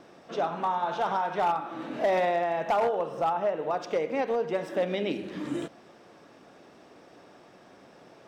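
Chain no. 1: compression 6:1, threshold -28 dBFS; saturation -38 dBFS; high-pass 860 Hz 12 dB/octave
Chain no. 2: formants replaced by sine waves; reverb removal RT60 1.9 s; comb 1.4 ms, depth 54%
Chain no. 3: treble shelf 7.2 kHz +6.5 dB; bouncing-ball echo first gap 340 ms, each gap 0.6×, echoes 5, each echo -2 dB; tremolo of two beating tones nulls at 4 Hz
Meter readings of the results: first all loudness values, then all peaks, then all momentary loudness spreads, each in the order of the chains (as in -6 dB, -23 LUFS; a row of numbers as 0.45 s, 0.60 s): -45.5 LUFS, -27.0 LUFS, -28.0 LUFS; -33.0 dBFS, -10.5 dBFS, -11.5 dBFS; 16 LU, 17 LU, 11 LU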